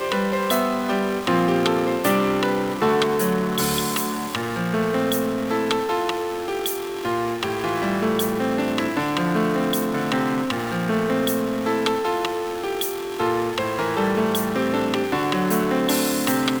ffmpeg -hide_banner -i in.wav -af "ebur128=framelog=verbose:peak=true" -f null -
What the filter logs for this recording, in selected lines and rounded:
Integrated loudness:
  I:         -22.3 LUFS
  Threshold: -32.3 LUFS
Loudness range:
  LRA:         2.8 LU
  Threshold: -42.5 LUFS
  LRA low:   -23.7 LUFS
  LRA high:  -20.9 LUFS
True peak:
  Peak:       -7.3 dBFS